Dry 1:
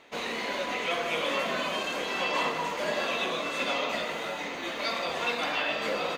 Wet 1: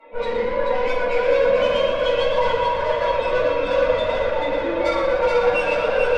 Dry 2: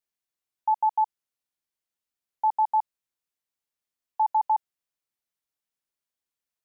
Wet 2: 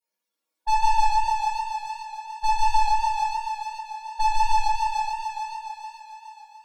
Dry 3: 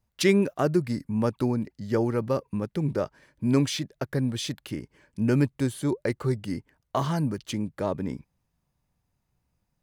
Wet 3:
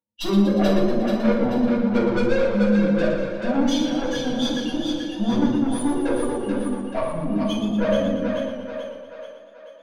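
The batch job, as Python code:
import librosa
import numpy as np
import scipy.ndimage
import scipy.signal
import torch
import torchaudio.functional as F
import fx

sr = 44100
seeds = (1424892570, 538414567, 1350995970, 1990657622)

p1 = fx.spec_expand(x, sr, power=3.0)
p2 = scipy.signal.sosfilt(scipy.signal.butter(4, 200.0, 'highpass', fs=sr, output='sos'), p1)
p3 = p2 + 0.7 * np.pad(p2, (int(3.6 * sr / 1000.0), 0))[:len(p2)]
p4 = fx.small_body(p3, sr, hz=(490.0, 930.0), ring_ms=70, db=15)
p5 = fx.tube_stage(p4, sr, drive_db=24.0, bias=0.35)
p6 = p5 + fx.echo_split(p5, sr, split_hz=450.0, low_ms=154, high_ms=434, feedback_pct=52, wet_db=-4, dry=0)
p7 = fx.room_shoebox(p6, sr, seeds[0], volume_m3=500.0, walls='furnished', distance_m=7.5)
p8 = fx.echo_warbled(p7, sr, ms=118, feedback_pct=60, rate_hz=2.8, cents=77, wet_db=-7.5)
y = F.gain(torch.from_numpy(p8), -5.0).numpy()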